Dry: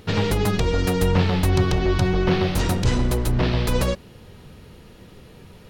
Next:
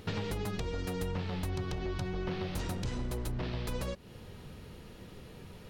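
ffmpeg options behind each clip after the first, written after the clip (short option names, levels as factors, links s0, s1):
-af "acompressor=threshold=0.0355:ratio=6,volume=0.631"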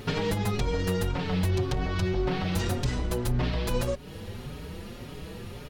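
-filter_complex "[0:a]asplit=2[s0][s1];[s1]asoftclip=type=hard:threshold=0.0158,volume=0.531[s2];[s0][s2]amix=inputs=2:normalize=0,asplit=2[s3][s4];[s4]adelay=5.2,afreqshift=1.8[s5];[s3][s5]amix=inputs=2:normalize=1,volume=2.66"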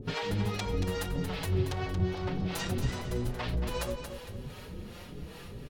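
-filter_complex "[0:a]acrossover=split=490[s0][s1];[s0]aeval=exprs='val(0)*(1-1/2+1/2*cos(2*PI*2.5*n/s))':c=same[s2];[s1]aeval=exprs='val(0)*(1-1/2-1/2*cos(2*PI*2.5*n/s))':c=same[s3];[s2][s3]amix=inputs=2:normalize=0,aecho=1:1:229|458|687|916:0.398|0.151|0.0575|0.0218"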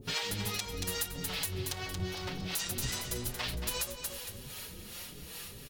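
-af "crystalizer=i=9:c=0,alimiter=limit=0.224:level=0:latency=1:release=299,volume=0.422"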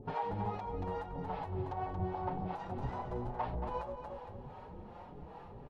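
-af "lowpass=f=850:t=q:w=4.6,volume=0.891"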